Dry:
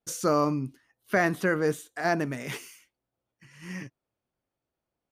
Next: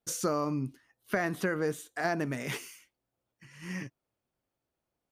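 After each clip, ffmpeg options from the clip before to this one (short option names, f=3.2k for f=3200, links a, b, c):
-af "acompressor=threshold=-26dB:ratio=6"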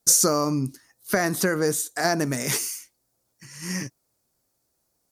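-af "aemphasis=mode=reproduction:type=cd,aexciter=amount=4.8:drive=8.6:freq=4.4k,volume=7dB"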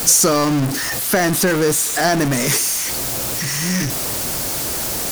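-af "aeval=exprs='val(0)+0.5*0.112*sgn(val(0))':c=same,volume=2.5dB"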